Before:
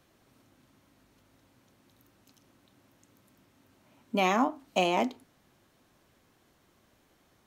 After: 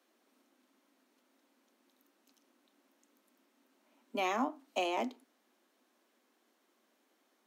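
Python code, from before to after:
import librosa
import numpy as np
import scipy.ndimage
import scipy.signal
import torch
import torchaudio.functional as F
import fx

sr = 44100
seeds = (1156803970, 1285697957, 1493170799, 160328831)

y = scipy.signal.sosfilt(scipy.signal.butter(12, 220.0, 'highpass', fs=sr, output='sos'), x)
y = y * 10.0 ** (-7.0 / 20.0)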